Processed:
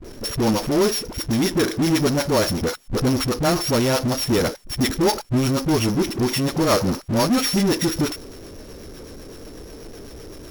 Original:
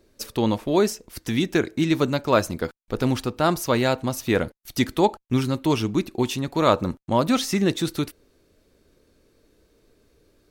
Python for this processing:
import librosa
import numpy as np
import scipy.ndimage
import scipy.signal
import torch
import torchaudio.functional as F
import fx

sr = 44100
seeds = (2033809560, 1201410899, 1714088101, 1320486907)

y = np.r_[np.sort(x[:len(x) // 8 * 8].reshape(-1, 8), axis=1).ravel(), x[len(x) // 8 * 8:]]
y = fx.dispersion(y, sr, late='highs', ms=45.0, hz=350.0)
y = fx.rotary(y, sr, hz=8.0)
y = fx.power_curve(y, sr, exponent=0.5)
y = y * 10.0 ** (-3.0 / 20.0)